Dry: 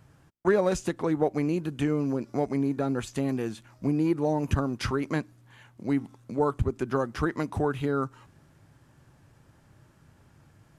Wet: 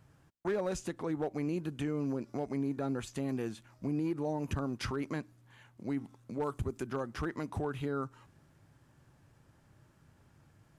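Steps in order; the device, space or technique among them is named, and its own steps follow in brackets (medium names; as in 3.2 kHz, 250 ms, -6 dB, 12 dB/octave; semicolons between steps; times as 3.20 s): clipper into limiter (hard clipper -17 dBFS, distortion -22 dB; peak limiter -21 dBFS, peak gain reduction 4 dB); 6.43–6.87 s: treble shelf 6.1 kHz +10.5 dB; trim -5.5 dB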